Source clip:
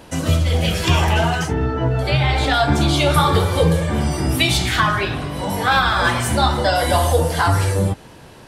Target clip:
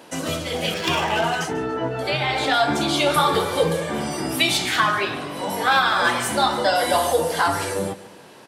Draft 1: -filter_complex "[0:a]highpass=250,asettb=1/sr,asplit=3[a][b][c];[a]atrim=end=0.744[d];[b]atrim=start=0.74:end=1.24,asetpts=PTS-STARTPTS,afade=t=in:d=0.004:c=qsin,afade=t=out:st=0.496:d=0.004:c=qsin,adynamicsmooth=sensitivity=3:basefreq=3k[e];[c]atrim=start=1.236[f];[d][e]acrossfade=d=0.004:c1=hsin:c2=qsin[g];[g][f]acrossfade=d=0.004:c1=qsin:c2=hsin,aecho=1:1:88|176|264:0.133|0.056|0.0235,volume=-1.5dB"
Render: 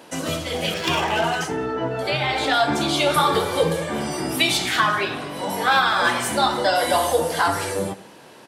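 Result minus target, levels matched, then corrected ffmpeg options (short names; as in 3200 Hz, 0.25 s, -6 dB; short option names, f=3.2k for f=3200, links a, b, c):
echo 54 ms early
-filter_complex "[0:a]highpass=250,asettb=1/sr,asplit=3[a][b][c];[a]atrim=end=0.744[d];[b]atrim=start=0.74:end=1.24,asetpts=PTS-STARTPTS,afade=t=in:d=0.004:c=qsin,afade=t=out:st=0.496:d=0.004:c=qsin,adynamicsmooth=sensitivity=3:basefreq=3k[e];[c]atrim=start=1.236[f];[d][e]acrossfade=d=0.004:c1=hsin:c2=qsin[g];[g][f]acrossfade=d=0.004:c1=qsin:c2=hsin,aecho=1:1:142|284|426:0.133|0.056|0.0235,volume=-1.5dB"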